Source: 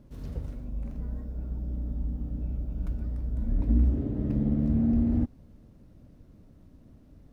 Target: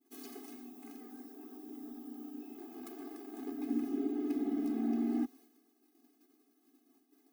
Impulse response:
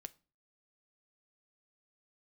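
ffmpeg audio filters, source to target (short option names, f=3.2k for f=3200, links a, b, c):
-filter_complex "[0:a]agate=range=-33dB:threshold=-45dB:ratio=3:detection=peak,asettb=1/sr,asplit=3[a][b][c];[a]atrim=end=2.574[d];[b]atrim=start=2.57:end=3.52,asetpts=PTS-STARTPTS,afade=t=in:d=0.004:c=qsin,afade=t=out:st=0.946:d=0.004:c=qsin,aeval=exprs='abs(val(0))':c=same[e];[c]atrim=start=3.516[f];[d][e]acrossfade=d=0.004:c1=hsin:c2=qsin[g];[g][f]acrossfade=d=0.004:c1=qsin:c2=hsin,aemphasis=mode=production:type=bsi,afftfilt=real='re*eq(mod(floor(b*sr/1024/220),2),1)':imag='im*eq(mod(floor(b*sr/1024/220),2),1)':win_size=1024:overlap=0.75,volume=4dB"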